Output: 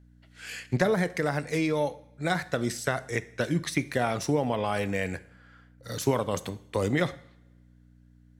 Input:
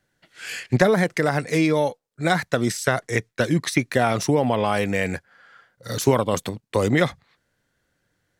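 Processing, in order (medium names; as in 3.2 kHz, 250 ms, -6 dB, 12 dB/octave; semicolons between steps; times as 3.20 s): hum 60 Hz, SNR 25 dB; two-slope reverb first 0.58 s, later 1.6 s, from -20 dB, DRR 13.5 dB; trim -7 dB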